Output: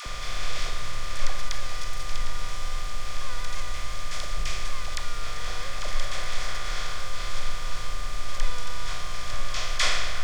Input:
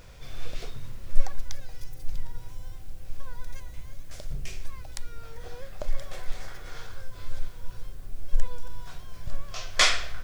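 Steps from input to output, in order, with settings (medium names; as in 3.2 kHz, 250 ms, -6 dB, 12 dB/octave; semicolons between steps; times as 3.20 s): spectral levelling over time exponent 0.4; phase dispersion lows, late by 65 ms, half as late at 650 Hz; whistle 1.2 kHz -35 dBFS; trim -6.5 dB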